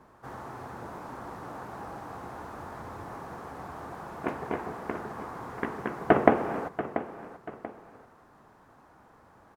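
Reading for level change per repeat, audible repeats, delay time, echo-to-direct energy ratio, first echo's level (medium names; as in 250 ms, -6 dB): -8.5 dB, 2, 686 ms, -11.5 dB, -12.0 dB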